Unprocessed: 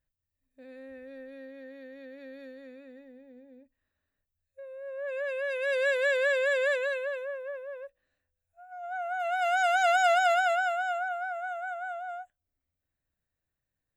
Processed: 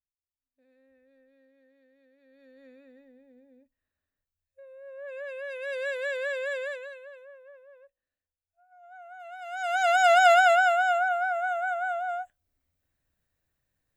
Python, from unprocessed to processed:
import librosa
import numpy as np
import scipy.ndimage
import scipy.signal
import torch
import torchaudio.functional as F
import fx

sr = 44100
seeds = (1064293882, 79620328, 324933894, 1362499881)

y = fx.gain(x, sr, db=fx.line((2.21, -18.0), (2.66, -5.0), (6.55, -5.0), (6.97, -13.0), (9.46, -13.0), (9.76, -1.0), (10.27, 6.5)))